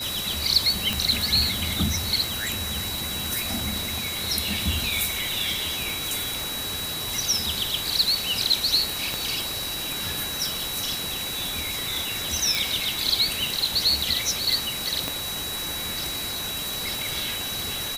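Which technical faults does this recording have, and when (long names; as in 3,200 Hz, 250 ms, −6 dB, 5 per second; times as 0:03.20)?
whistle 3,900 Hz −31 dBFS
0:00.93: click
0:05.90: click
0:09.14: click
0:12.55: click
0:15.08: click −11 dBFS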